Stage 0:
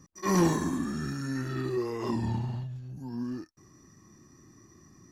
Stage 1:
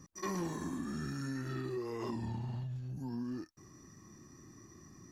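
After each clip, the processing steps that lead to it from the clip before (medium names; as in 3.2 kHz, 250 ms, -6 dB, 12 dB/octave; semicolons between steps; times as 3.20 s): compression 6:1, threshold -36 dBFS, peak gain reduction 14.5 dB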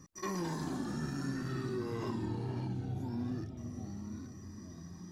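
ever faster or slower copies 173 ms, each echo -3 st, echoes 2, each echo -6 dB; bucket-brigade echo 469 ms, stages 2048, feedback 53%, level -9 dB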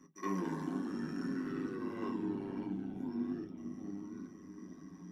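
AM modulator 99 Hz, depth 75%; reverberation RT60 0.15 s, pre-delay 3 ms, DRR 2.5 dB; trim -6.5 dB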